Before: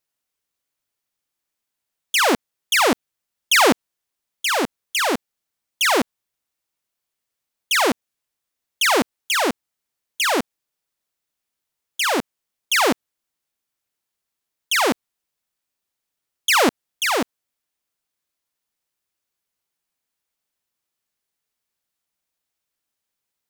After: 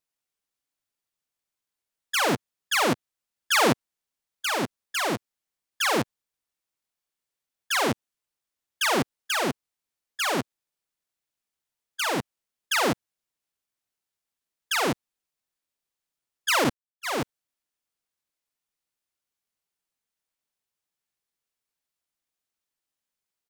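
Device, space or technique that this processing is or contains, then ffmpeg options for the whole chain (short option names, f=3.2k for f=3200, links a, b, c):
octave pedal: -filter_complex "[0:a]asettb=1/sr,asplit=3[a][b][c];[a]atrim=end=16.644[d];[b]atrim=start=16.64:end=17.18,asetpts=PTS-STARTPTS,afade=t=in:d=0.004:c=qsin,afade=t=out:st=0.536:d=0.004:c=qsin,agate=range=-39dB:threshold=-20dB:ratio=16:detection=peak[e];[c]atrim=start=17.176[f];[d][e]acrossfade=d=0.004:c1=hsin:c2=qsin[g];[g][f]acrossfade=d=0.004:c1=qsin:c2=hsin,asplit=2[h][i];[i]asetrate=22050,aresample=44100,atempo=2,volume=-5dB[j];[h][j]amix=inputs=2:normalize=0,volume=-7dB"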